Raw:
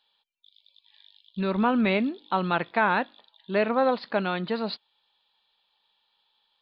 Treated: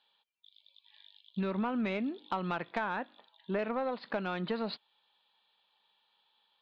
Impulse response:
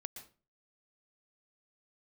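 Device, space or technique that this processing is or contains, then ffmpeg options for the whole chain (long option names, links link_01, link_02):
AM radio: -filter_complex "[0:a]highpass=100,lowpass=3700,acompressor=threshold=-29dB:ratio=6,asoftclip=type=tanh:threshold=-21.5dB,asettb=1/sr,asplit=3[link_01][link_02][link_03];[link_01]atrim=end=2.964[link_04];[link_02]atrim=start=2.96:end=3.59,asetpts=PTS-STARTPTS,afade=type=in:duration=0.004:curve=qsin,afade=type=out:start_time=0.626:duration=0.004:curve=qsin,acrossover=split=2700[link_05][link_06];[link_06]acompressor=threshold=-60dB:ratio=4:attack=1:release=60[link_07];[link_05][link_07]amix=inputs=2:normalize=0[link_08];[link_03]atrim=start=3.586[link_09];[link_04][link_08]acrossfade=duration=0.004:curve1=hsin:curve2=qsin[link_10];[link_10][link_09]acrossfade=duration=0.004:curve1=qsin:curve2=hsin"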